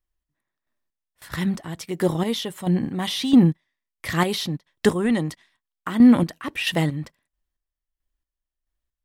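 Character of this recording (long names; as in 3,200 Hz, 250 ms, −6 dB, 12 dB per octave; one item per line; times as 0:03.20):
chopped level 1.5 Hz, depth 60%, duty 35%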